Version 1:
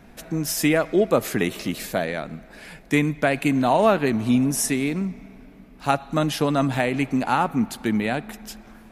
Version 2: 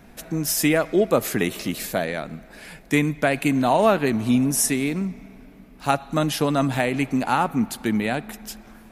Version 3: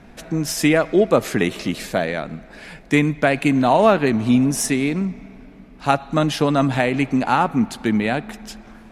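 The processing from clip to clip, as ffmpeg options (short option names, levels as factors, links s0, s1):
-af "highshelf=f=7600:g=5.5"
-af "adynamicsmooth=sensitivity=0.5:basefreq=7400,volume=1.5"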